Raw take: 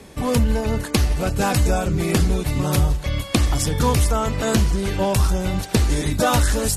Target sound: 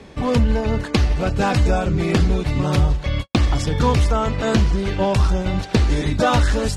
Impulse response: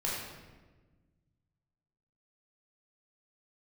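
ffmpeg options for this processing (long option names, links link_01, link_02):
-filter_complex "[0:a]lowpass=4600,asplit=3[link_01][link_02][link_03];[link_01]afade=type=out:start_time=3.19:duration=0.02[link_04];[link_02]agate=range=-60dB:threshold=-23dB:ratio=16:detection=peak,afade=type=in:start_time=3.19:duration=0.02,afade=type=out:start_time=5.49:duration=0.02[link_05];[link_03]afade=type=in:start_time=5.49:duration=0.02[link_06];[link_04][link_05][link_06]amix=inputs=3:normalize=0,volume=1.5dB"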